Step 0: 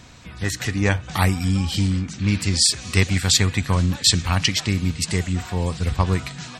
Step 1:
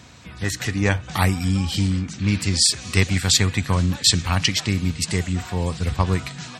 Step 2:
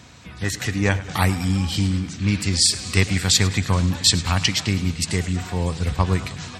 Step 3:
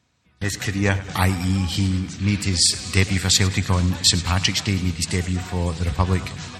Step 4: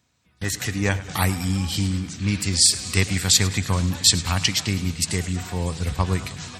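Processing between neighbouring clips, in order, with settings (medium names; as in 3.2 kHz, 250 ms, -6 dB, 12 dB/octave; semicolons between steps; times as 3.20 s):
high-pass 58 Hz
modulated delay 106 ms, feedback 68%, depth 90 cents, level -17 dB
gate with hold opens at -26 dBFS
treble shelf 7.8 kHz +10 dB; trim -2.5 dB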